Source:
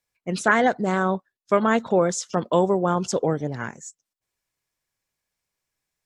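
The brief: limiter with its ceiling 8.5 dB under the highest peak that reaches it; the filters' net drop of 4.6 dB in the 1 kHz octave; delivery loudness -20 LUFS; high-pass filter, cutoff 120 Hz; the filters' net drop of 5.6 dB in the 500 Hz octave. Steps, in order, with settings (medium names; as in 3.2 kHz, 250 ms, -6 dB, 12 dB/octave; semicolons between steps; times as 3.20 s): high-pass 120 Hz; peaking EQ 500 Hz -6 dB; peaking EQ 1 kHz -4 dB; trim +8.5 dB; peak limiter -7.5 dBFS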